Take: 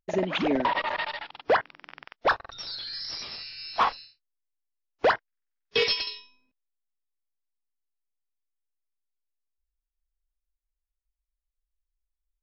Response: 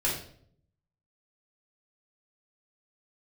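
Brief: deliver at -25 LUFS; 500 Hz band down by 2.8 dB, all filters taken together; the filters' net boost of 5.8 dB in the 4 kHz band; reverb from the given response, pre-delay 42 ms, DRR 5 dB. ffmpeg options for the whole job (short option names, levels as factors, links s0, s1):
-filter_complex "[0:a]equalizer=f=500:t=o:g=-3.5,equalizer=f=4000:t=o:g=7.5,asplit=2[s0][s1];[1:a]atrim=start_sample=2205,adelay=42[s2];[s1][s2]afir=irnorm=-1:irlink=0,volume=0.2[s3];[s0][s3]amix=inputs=2:normalize=0,volume=1.06"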